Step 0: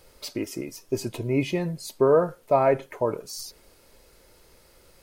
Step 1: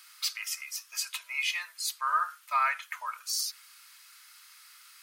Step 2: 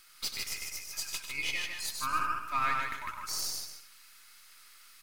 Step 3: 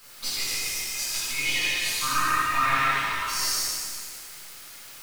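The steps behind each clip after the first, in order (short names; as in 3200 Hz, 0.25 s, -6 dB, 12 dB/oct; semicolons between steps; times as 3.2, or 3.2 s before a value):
elliptic high-pass 1200 Hz, stop band 70 dB; gain +6.5 dB
half-wave gain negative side -7 dB; on a send: tapped delay 95/152/254/290/361 ms -7.5/-3.5/-16.5/-13.5/-20 dB; on the sum: gain -2 dB
added noise white -56 dBFS; shimmer reverb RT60 1.8 s, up +7 st, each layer -8 dB, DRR -8 dB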